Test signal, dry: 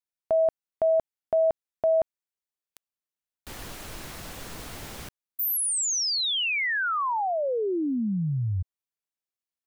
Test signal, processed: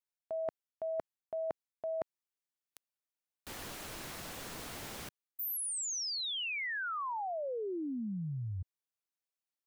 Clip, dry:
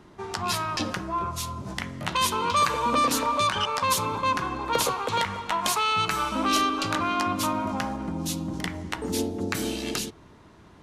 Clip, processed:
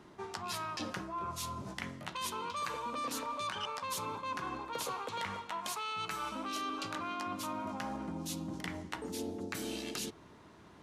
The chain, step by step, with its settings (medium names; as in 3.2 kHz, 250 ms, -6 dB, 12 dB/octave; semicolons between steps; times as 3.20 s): bass shelf 89 Hz -10.5 dB; reverse; compression 5:1, threshold -33 dBFS; reverse; trim -3.5 dB